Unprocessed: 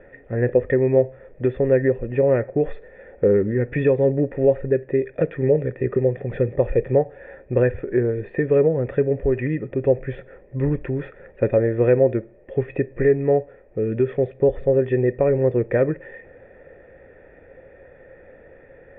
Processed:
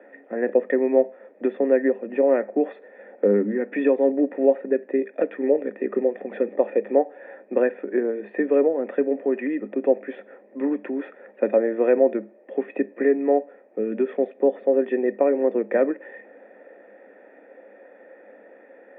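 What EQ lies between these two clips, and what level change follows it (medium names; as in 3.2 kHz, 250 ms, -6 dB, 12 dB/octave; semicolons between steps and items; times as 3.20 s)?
rippled Chebyshev high-pass 200 Hz, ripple 6 dB; +3.0 dB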